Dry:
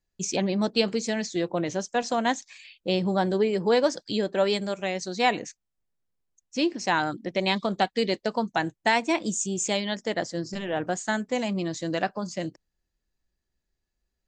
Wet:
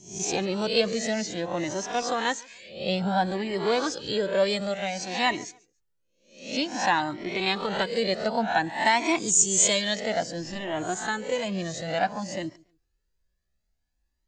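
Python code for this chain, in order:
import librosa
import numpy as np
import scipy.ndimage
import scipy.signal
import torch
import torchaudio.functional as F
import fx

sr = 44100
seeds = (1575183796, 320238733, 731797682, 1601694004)

p1 = fx.spec_swells(x, sr, rise_s=0.5)
p2 = fx.high_shelf(p1, sr, hz=3600.0, db=10.5, at=(9.28, 10.0))
p3 = p2 + fx.echo_feedback(p2, sr, ms=142, feedback_pct=23, wet_db=-23.5, dry=0)
p4 = fx.comb_cascade(p3, sr, direction='rising', hz=0.56)
y = F.gain(torch.from_numpy(p4), 3.0).numpy()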